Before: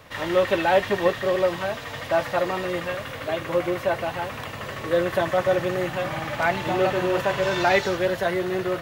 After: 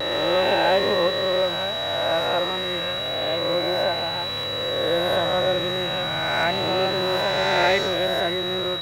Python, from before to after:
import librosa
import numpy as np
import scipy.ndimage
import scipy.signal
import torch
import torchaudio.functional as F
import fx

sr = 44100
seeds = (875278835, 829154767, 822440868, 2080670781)

y = fx.spec_swells(x, sr, rise_s=2.11)
y = y + 10.0 ** (-23.0 / 20.0) * np.sin(2.0 * np.pi * 3900.0 * np.arange(len(y)) / sr)
y = fx.vibrato(y, sr, rate_hz=0.32, depth_cents=13.0)
y = y * librosa.db_to_amplitude(-4.0)